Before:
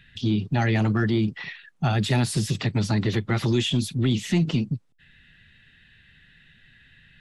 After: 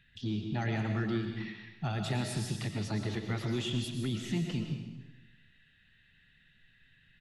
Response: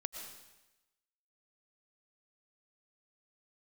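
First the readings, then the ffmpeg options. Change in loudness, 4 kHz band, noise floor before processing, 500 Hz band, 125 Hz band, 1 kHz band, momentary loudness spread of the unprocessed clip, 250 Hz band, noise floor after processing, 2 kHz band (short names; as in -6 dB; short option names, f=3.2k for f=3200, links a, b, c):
-10.5 dB, -10.0 dB, -58 dBFS, -10.0 dB, -10.5 dB, -10.0 dB, 6 LU, -10.0 dB, -65 dBFS, -10.0 dB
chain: -filter_complex "[0:a]asplit=2[a][b];[b]adelay=454.8,volume=-27dB,highshelf=f=4k:g=-10.2[c];[a][c]amix=inputs=2:normalize=0[d];[1:a]atrim=start_sample=2205[e];[d][e]afir=irnorm=-1:irlink=0,volume=-9dB"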